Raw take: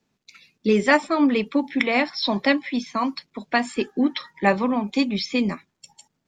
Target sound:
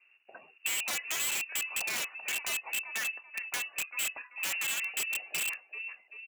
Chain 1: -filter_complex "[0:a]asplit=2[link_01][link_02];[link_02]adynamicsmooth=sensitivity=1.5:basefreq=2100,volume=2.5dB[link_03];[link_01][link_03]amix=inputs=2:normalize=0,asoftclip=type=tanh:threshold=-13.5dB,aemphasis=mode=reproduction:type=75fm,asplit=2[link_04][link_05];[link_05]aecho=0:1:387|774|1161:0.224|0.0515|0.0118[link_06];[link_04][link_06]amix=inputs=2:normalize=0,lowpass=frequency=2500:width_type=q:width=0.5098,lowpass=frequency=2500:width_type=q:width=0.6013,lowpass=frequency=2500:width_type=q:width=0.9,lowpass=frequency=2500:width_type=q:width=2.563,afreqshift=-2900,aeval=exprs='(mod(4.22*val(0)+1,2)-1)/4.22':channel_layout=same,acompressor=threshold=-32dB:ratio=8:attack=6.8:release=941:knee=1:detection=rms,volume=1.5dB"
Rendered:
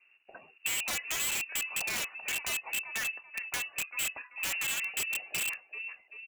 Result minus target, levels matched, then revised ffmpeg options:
250 Hz band +3.0 dB
-filter_complex "[0:a]asplit=2[link_01][link_02];[link_02]adynamicsmooth=sensitivity=1.5:basefreq=2100,volume=2.5dB[link_03];[link_01][link_03]amix=inputs=2:normalize=0,asoftclip=type=tanh:threshold=-13.5dB,aemphasis=mode=reproduction:type=75fm,asplit=2[link_04][link_05];[link_05]aecho=0:1:387|774|1161:0.224|0.0515|0.0118[link_06];[link_04][link_06]amix=inputs=2:normalize=0,lowpass=frequency=2500:width_type=q:width=0.5098,lowpass=frequency=2500:width_type=q:width=0.6013,lowpass=frequency=2500:width_type=q:width=0.9,lowpass=frequency=2500:width_type=q:width=2.563,afreqshift=-2900,aeval=exprs='(mod(4.22*val(0)+1,2)-1)/4.22':channel_layout=same,acompressor=threshold=-32dB:ratio=8:attack=6.8:release=941:knee=1:detection=rms,highpass=frequency=250:poles=1,volume=1.5dB"

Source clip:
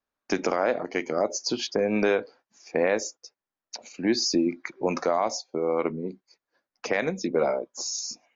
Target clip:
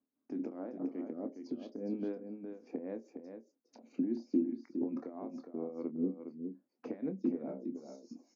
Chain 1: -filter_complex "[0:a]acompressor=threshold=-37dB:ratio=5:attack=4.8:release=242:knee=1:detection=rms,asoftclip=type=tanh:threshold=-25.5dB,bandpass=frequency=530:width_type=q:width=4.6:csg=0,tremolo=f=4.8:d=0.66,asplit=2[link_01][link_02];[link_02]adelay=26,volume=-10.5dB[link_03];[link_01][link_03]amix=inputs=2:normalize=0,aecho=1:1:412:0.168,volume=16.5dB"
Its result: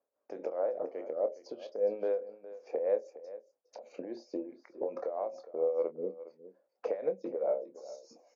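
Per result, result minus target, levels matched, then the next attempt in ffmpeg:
250 Hz band −15.0 dB; echo-to-direct −8 dB
-filter_complex "[0:a]acompressor=threshold=-37dB:ratio=5:attack=4.8:release=242:knee=1:detection=rms,asoftclip=type=tanh:threshold=-25.5dB,bandpass=frequency=260:width_type=q:width=4.6:csg=0,tremolo=f=4.8:d=0.66,asplit=2[link_01][link_02];[link_02]adelay=26,volume=-10.5dB[link_03];[link_01][link_03]amix=inputs=2:normalize=0,aecho=1:1:412:0.168,volume=16.5dB"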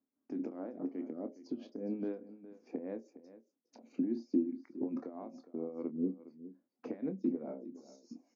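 echo-to-direct −8 dB
-filter_complex "[0:a]acompressor=threshold=-37dB:ratio=5:attack=4.8:release=242:knee=1:detection=rms,asoftclip=type=tanh:threshold=-25.5dB,bandpass=frequency=260:width_type=q:width=4.6:csg=0,tremolo=f=4.8:d=0.66,asplit=2[link_01][link_02];[link_02]adelay=26,volume=-10.5dB[link_03];[link_01][link_03]amix=inputs=2:normalize=0,aecho=1:1:412:0.422,volume=16.5dB"

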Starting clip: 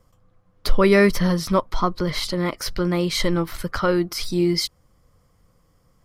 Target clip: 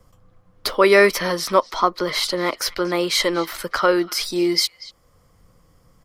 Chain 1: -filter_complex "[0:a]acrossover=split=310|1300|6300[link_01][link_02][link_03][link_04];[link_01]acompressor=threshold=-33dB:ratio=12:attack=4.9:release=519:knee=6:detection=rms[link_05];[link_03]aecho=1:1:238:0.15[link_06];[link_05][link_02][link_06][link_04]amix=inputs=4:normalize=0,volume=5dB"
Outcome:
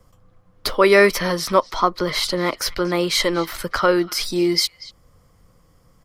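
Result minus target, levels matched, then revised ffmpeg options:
downward compressor: peak gain reduction −9 dB
-filter_complex "[0:a]acrossover=split=310|1300|6300[link_01][link_02][link_03][link_04];[link_01]acompressor=threshold=-43dB:ratio=12:attack=4.9:release=519:knee=6:detection=rms[link_05];[link_03]aecho=1:1:238:0.15[link_06];[link_05][link_02][link_06][link_04]amix=inputs=4:normalize=0,volume=5dB"

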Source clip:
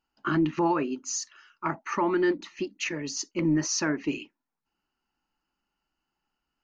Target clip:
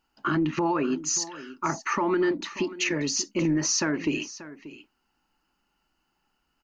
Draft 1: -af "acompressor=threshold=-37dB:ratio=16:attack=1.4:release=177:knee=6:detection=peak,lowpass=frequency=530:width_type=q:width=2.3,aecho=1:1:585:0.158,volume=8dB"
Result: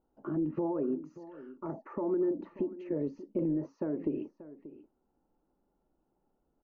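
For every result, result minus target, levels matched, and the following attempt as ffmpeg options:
downward compressor: peak gain reduction +9.5 dB; 500 Hz band +3.5 dB
-af "acompressor=threshold=-27dB:ratio=16:attack=1.4:release=177:knee=6:detection=peak,lowpass=frequency=530:width_type=q:width=2.3,aecho=1:1:585:0.158,volume=8dB"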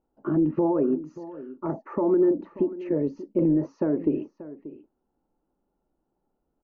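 500 Hz band +3.5 dB
-af "acompressor=threshold=-27dB:ratio=16:attack=1.4:release=177:knee=6:detection=peak,aecho=1:1:585:0.158,volume=8dB"

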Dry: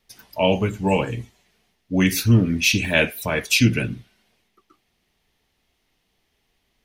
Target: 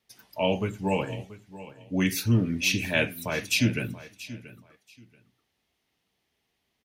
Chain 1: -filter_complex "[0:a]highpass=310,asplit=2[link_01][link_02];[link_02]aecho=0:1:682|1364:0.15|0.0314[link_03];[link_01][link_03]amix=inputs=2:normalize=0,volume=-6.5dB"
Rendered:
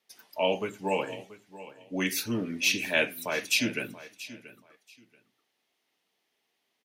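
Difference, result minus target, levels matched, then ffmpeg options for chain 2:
125 Hz band −12.0 dB
-filter_complex "[0:a]highpass=78,asplit=2[link_01][link_02];[link_02]aecho=0:1:682|1364:0.15|0.0314[link_03];[link_01][link_03]amix=inputs=2:normalize=0,volume=-6.5dB"

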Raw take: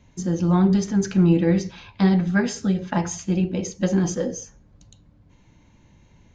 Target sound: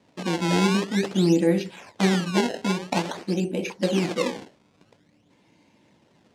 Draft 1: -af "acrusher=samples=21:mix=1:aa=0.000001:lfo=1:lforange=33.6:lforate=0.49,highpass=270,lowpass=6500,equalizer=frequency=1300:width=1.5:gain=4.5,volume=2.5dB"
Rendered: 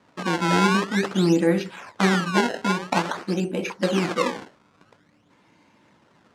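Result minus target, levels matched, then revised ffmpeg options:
1,000 Hz band +4.5 dB
-af "acrusher=samples=21:mix=1:aa=0.000001:lfo=1:lforange=33.6:lforate=0.49,highpass=270,lowpass=6500,equalizer=frequency=1300:width=1.5:gain=-6,volume=2.5dB"

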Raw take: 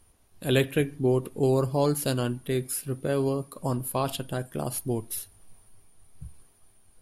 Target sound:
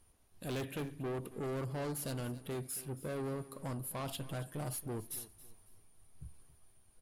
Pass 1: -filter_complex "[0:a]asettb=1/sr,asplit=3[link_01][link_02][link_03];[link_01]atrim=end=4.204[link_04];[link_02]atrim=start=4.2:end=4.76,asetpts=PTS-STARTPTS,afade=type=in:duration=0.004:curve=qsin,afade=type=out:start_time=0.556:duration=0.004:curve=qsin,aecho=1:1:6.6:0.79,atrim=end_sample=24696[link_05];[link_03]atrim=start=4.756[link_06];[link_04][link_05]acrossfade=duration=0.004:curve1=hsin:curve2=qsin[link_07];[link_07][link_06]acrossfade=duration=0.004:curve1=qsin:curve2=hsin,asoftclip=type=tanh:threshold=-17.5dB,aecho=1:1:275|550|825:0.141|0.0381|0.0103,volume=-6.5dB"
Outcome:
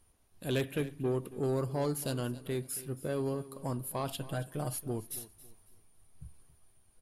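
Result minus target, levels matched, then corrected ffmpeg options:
soft clipping: distortion −11 dB
-filter_complex "[0:a]asettb=1/sr,asplit=3[link_01][link_02][link_03];[link_01]atrim=end=4.204[link_04];[link_02]atrim=start=4.2:end=4.76,asetpts=PTS-STARTPTS,afade=type=in:duration=0.004:curve=qsin,afade=type=out:start_time=0.556:duration=0.004:curve=qsin,aecho=1:1:6.6:0.79,atrim=end_sample=24696[link_05];[link_03]atrim=start=4.756[link_06];[link_04][link_05]acrossfade=duration=0.004:curve1=hsin:curve2=qsin[link_07];[link_07][link_06]acrossfade=duration=0.004:curve1=qsin:curve2=hsin,asoftclip=type=tanh:threshold=-29dB,aecho=1:1:275|550|825:0.141|0.0381|0.0103,volume=-6.5dB"

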